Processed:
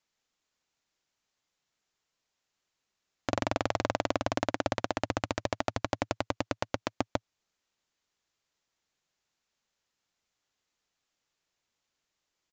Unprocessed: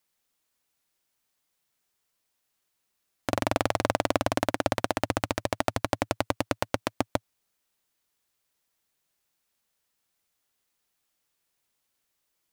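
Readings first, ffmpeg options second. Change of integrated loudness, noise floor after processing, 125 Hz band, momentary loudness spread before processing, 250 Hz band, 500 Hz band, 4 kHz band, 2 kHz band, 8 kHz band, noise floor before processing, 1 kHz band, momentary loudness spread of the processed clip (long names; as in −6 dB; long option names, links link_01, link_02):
−4.0 dB, −85 dBFS, −3.5 dB, 5 LU, −4.0 dB, −4.0 dB, −4.0 dB, −4.0 dB, −6.0 dB, −78 dBFS, −4.0 dB, 5 LU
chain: -af "aresample=16000,aresample=44100,alimiter=limit=-8dB:level=0:latency=1:release=361,volume=-1.5dB"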